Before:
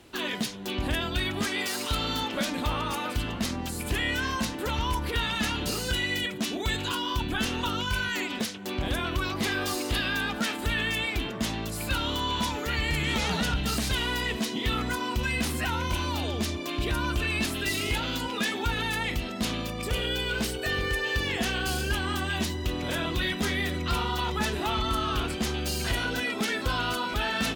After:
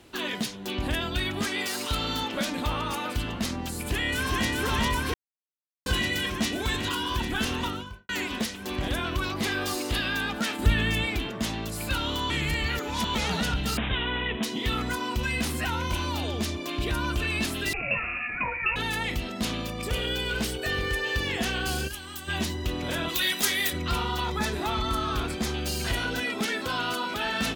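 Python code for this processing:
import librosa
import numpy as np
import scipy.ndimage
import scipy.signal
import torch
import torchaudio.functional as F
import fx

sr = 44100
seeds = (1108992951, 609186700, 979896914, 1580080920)

y = fx.echo_throw(x, sr, start_s=3.72, length_s=0.76, ms=400, feedback_pct=85, wet_db=-2.0)
y = fx.studio_fade_out(y, sr, start_s=7.56, length_s=0.53)
y = fx.low_shelf(y, sr, hz=260.0, db=10.5, at=(10.59, 11.16))
y = fx.resample_bad(y, sr, factor=6, down='none', up='filtered', at=(13.77, 14.43))
y = fx.freq_invert(y, sr, carrier_hz=2700, at=(17.73, 18.76))
y = fx.echo_throw(y, sr, start_s=19.51, length_s=0.64, ms=420, feedback_pct=45, wet_db=-16.0)
y = fx.pre_emphasis(y, sr, coefficient=0.8, at=(21.87, 22.27), fade=0.02)
y = fx.riaa(y, sr, side='recording', at=(23.08, 23.72), fade=0.02)
y = fx.notch(y, sr, hz=2900.0, q=7.6, at=(24.25, 25.49))
y = fx.highpass(y, sr, hz=150.0, slope=12, at=(26.45, 27.25))
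y = fx.edit(y, sr, fx.silence(start_s=5.14, length_s=0.72),
    fx.reverse_span(start_s=12.3, length_s=0.85), tone=tone)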